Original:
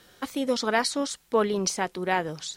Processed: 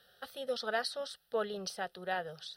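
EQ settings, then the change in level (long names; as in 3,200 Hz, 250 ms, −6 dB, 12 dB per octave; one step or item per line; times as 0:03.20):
low-shelf EQ 130 Hz −10.5 dB
phaser with its sweep stopped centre 1,500 Hz, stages 8
−6.5 dB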